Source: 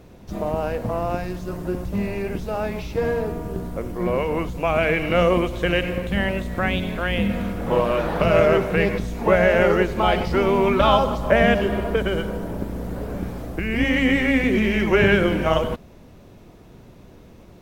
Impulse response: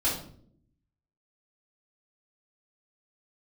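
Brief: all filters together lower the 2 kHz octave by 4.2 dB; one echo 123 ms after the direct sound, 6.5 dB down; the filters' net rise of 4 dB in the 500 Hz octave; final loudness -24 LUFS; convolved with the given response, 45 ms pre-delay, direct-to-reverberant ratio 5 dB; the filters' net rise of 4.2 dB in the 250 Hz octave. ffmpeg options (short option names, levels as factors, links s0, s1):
-filter_complex "[0:a]equalizer=f=250:t=o:g=4.5,equalizer=f=500:t=o:g=4,equalizer=f=2000:t=o:g=-5.5,aecho=1:1:123:0.473,asplit=2[s0][s1];[1:a]atrim=start_sample=2205,adelay=45[s2];[s1][s2]afir=irnorm=-1:irlink=0,volume=0.188[s3];[s0][s3]amix=inputs=2:normalize=0,volume=0.398"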